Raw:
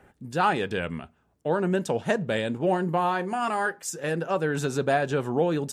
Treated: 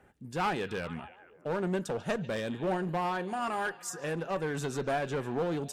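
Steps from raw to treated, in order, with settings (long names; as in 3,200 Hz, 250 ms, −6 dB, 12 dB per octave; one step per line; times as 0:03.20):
echo through a band-pass that steps 144 ms, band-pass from 3,700 Hz, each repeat −0.7 octaves, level −12 dB
asymmetric clip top −23.5 dBFS
level −5.5 dB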